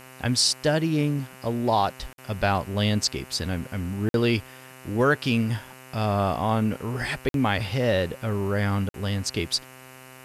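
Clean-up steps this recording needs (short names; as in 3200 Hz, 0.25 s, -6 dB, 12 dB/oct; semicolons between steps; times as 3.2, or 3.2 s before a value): de-hum 129.8 Hz, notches 23; interpolate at 2.13/4.09/7.29/8.89, 52 ms; denoiser 25 dB, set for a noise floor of -46 dBFS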